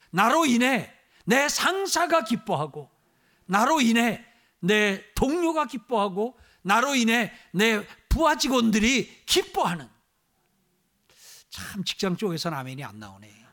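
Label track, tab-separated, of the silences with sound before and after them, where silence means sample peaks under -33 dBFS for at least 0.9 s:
9.830000	11.530000	silence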